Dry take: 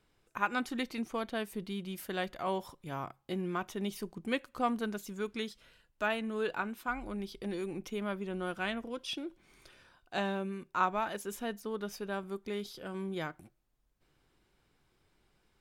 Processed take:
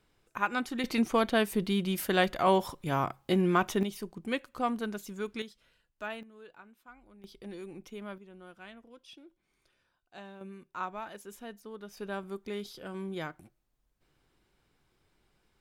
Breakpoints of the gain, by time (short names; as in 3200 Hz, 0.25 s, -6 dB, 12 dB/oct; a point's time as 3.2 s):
+1.5 dB
from 0.84 s +9.5 dB
from 3.83 s +0.5 dB
from 5.42 s -6.5 dB
from 6.23 s -18 dB
from 7.24 s -6 dB
from 8.18 s -14 dB
from 10.41 s -7 dB
from 11.97 s 0 dB